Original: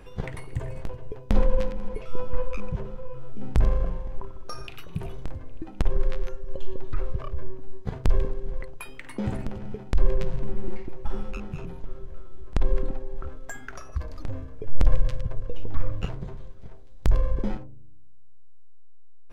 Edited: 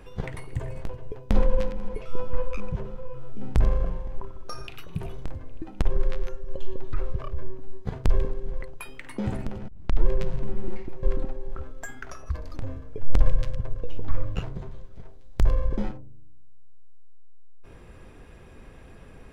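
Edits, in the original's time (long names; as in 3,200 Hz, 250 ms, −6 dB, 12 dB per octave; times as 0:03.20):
0:09.68: tape start 0.38 s
0:11.03–0:12.69: remove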